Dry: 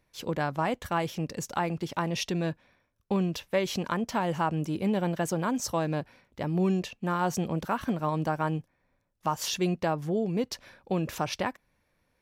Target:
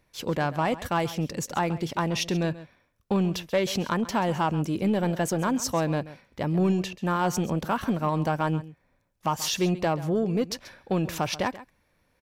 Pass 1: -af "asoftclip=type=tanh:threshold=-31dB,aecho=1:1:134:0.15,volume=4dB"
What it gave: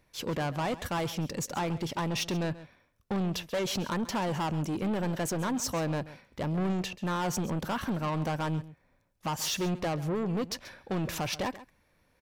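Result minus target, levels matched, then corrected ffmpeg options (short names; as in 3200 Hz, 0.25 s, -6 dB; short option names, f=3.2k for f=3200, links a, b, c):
soft clip: distortion +13 dB
-af "asoftclip=type=tanh:threshold=-19dB,aecho=1:1:134:0.15,volume=4dB"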